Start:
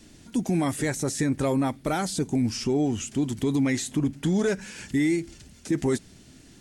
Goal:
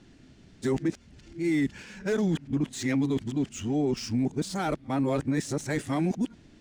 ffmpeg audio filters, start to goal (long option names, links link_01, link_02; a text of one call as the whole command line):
ffmpeg -i in.wav -af "areverse,adynamicsmooth=sensitivity=7:basefreq=4100,volume=-2.5dB" out.wav